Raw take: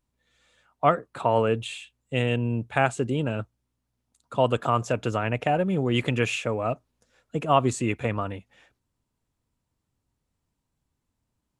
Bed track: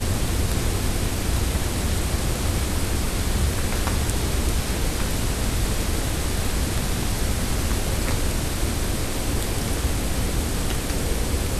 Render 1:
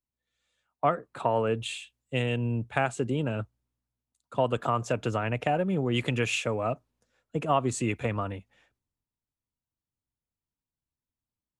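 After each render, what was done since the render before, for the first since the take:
downward compressor 2.5 to 1, threshold −24 dBFS, peak gain reduction 7.5 dB
multiband upward and downward expander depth 40%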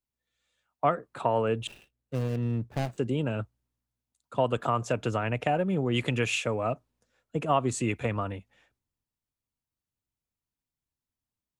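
0:01.67–0:02.98: running median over 41 samples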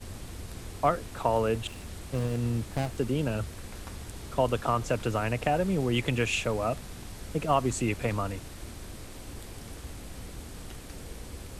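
mix in bed track −18 dB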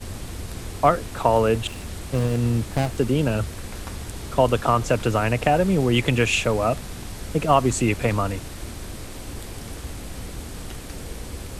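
level +7.5 dB

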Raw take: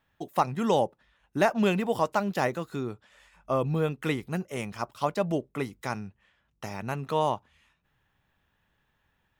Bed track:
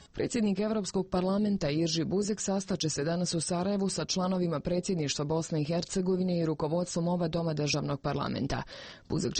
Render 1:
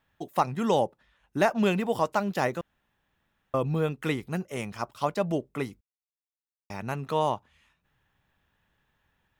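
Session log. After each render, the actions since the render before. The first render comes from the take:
0:02.61–0:03.54: fill with room tone
0:05.81–0:06.70: silence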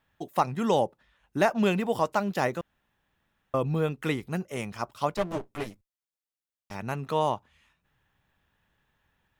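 0:05.17–0:06.75: lower of the sound and its delayed copy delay 9.7 ms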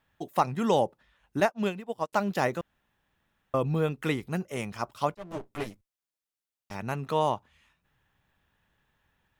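0:01.40–0:02.13: expander for the loud parts 2.5 to 1, over −41 dBFS
0:05.15–0:05.65: fade in equal-power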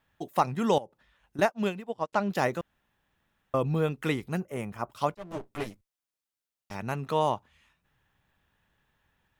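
0:00.78–0:01.39: downward compressor 2.5 to 1, threshold −47 dBFS
0:01.89–0:02.30: high-frequency loss of the air 78 metres
0:04.40–0:04.91: parametric band 4,700 Hz −13.5 dB 1.6 octaves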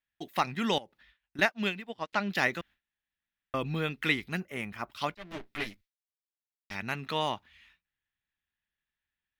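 noise gate with hold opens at −55 dBFS
octave-band graphic EQ 125/500/1,000/2,000/4,000/8,000 Hz −7/−7/−5/+8/+7/−6 dB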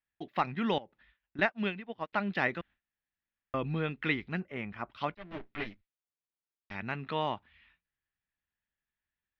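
high-frequency loss of the air 320 metres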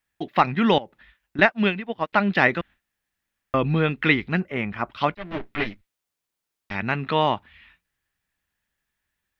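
level +11.5 dB
brickwall limiter −3 dBFS, peak gain reduction 1 dB

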